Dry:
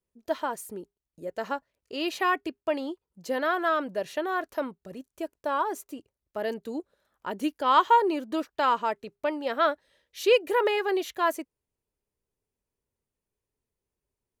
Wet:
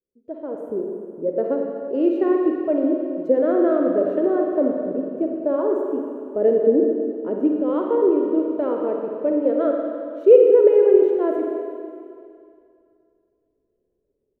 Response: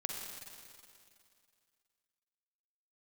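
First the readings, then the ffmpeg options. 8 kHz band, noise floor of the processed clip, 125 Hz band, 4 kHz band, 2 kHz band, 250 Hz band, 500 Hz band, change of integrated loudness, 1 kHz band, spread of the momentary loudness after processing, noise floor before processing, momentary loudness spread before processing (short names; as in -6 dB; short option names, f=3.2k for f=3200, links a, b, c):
under -25 dB, -73 dBFS, n/a, under -15 dB, under -10 dB, +13.0 dB, +12.0 dB, +8.0 dB, -7.0 dB, 15 LU, under -85 dBFS, 18 LU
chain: -filter_complex "[0:a]dynaudnorm=f=360:g=3:m=16dB,firequalizer=gain_entry='entry(150,0);entry(260,10);entry(490,13);entry(840,-10);entry(1900,-14);entry(4700,-30)':delay=0.05:min_phase=1[a];[1:a]atrim=start_sample=2205[b];[a][b]afir=irnorm=-1:irlink=0,volume=-10.5dB"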